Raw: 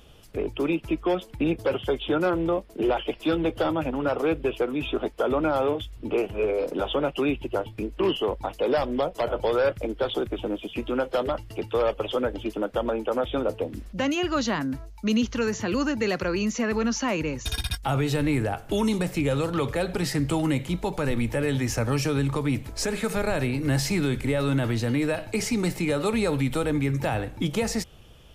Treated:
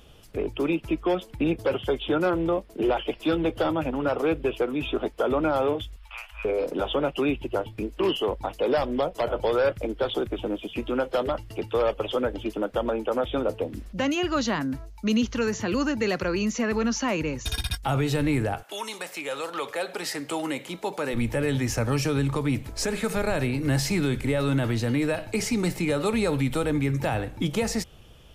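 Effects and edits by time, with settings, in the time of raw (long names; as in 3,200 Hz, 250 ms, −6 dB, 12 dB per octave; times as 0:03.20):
0:05.96–0:06.45: inverse Chebyshev band-stop filter 130–410 Hz, stop band 60 dB
0:07.87–0:08.27: bass and treble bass −3 dB, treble +5 dB
0:18.62–0:21.13: high-pass filter 890 Hz → 290 Hz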